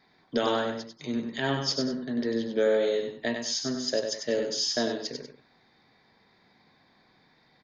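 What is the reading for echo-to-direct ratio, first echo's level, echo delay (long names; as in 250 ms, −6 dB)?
−5.5 dB, −6.0 dB, 96 ms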